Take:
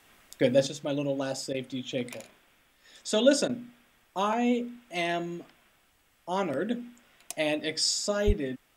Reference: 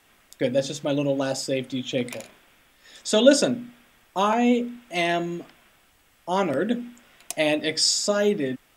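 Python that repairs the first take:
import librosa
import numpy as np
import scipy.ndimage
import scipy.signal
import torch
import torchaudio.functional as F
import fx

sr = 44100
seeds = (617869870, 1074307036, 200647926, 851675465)

y = fx.highpass(x, sr, hz=140.0, slope=24, at=(8.26, 8.38), fade=0.02)
y = fx.fix_interpolate(y, sr, at_s=(1.53, 3.48), length_ms=11.0)
y = fx.gain(y, sr, db=fx.steps((0.0, 0.0), (0.67, 6.0)))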